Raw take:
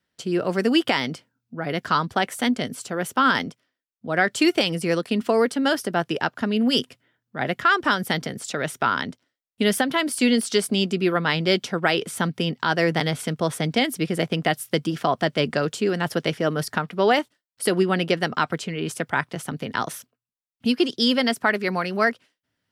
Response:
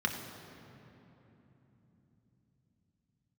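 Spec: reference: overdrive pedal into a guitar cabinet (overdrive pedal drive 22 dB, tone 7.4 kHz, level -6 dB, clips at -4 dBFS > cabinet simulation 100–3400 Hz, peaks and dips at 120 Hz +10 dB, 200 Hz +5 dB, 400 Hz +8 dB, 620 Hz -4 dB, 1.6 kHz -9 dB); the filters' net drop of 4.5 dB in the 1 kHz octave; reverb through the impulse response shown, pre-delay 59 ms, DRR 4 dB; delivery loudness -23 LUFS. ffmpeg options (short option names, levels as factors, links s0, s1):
-filter_complex "[0:a]equalizer=f=1000:t=o:g=-4,asplit=2[s0][s1];[1:a]atrim=start_sample=2205,adelay=59[s2];[s1][s2]afir=irnorm=-1:irlink=0,volume=0.266[s3];[s0][s3]amix=inputs=2:normalize=0,asplit=2[s4][s5];[s5]highpass=f=720:p=1,volume=12.6,asoftclip=type=tanh:threshold=0.631[s6];[s4][s6]amix=inputs=2:normalize=0,lowpass=f=7400:p=1,volume=0.501,highpass=100,equalizer=f=120:t=q:w=4:g=10,equalizer=f=200:t=q:w=4:g=5,equalizer=f=400:t=q:w=4:g=8,equalizer=f=620:t=q:w=4:g=-4,equalizer=f=1600:t=q:w=4:g=-9,lowpass=f=3400:w=0.5412,lowpass=f=3400:w=1.3066,volume=0.355"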